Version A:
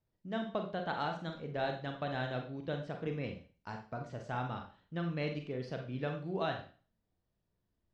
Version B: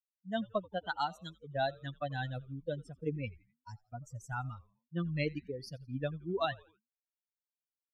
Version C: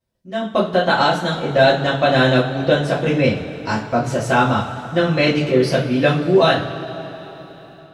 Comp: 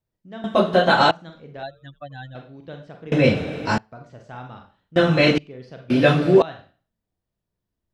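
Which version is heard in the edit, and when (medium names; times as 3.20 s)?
A
0.44–1.11 s: from C
1.63–2.35 s: from B
3.12–3.78 s: from C
4.96–5.38 s: from C
5.90–6.42 s: from C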